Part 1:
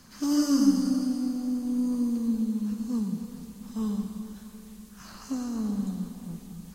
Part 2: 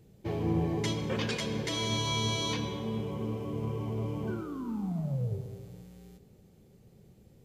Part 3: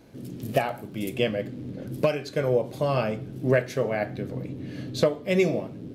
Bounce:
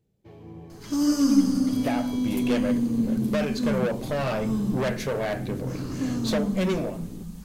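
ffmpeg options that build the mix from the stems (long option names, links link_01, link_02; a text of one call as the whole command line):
ffmpeg -i stem1.wav -i stem2.wav -i stem3.wav -filter_complex "[0:a]lowshelf=frequency=91:gain=10.5,adelay=700,volume=1dB[link_01];[1:a]volume=-14dB[link_02];[2:a]dynaudnorm=framelen=240:gausssize=7:maxgain=10dB,asoftclip=type=tanh:threshold=-20dB,adelay=1300,volume=-3dB[link_03];[link_01][link_02][link_03]amix=inputs=3:normalize=0" out.wav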